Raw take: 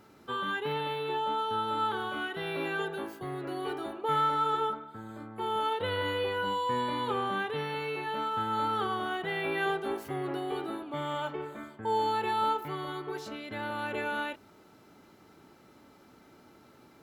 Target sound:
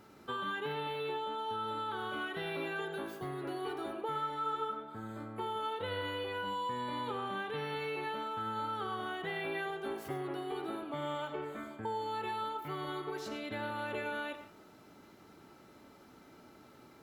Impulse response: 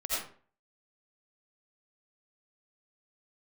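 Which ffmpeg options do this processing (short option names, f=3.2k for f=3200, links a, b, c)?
-filter_complex "[0:a]acompressor=threshold=-34dB:ratio=6,asplit=2[a][b];[1:a]atrim=start_sample=2205[c];[b][c]afir=irnorm=-1:irlink=0,volume=-13dB[d];[a][d]amix=inputs=2:normalize=0,volume=-2dB"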